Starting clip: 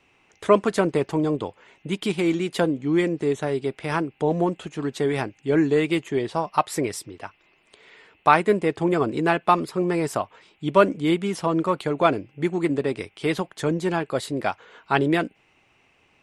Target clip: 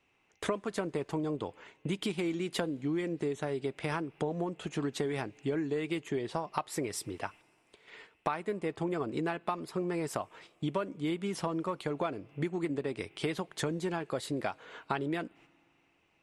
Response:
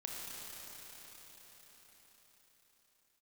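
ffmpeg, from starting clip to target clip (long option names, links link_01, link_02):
-filter_complex "[0:a]agate=range=-11dB:threshold=-50dB:ratio=16:detection=peak,acompressor=threshold=-30dB:ratio=10,asplit=2[link_01][link_02];[1:a]atrim=start_sample=2205,asetrate=79380,aresample=44100[link_03];[link_02][link_03]afir=irnorm=-1:irlink=0,volume=-22dB[link_04];[link_01][link_04]amix=inputs=2:normalize=0"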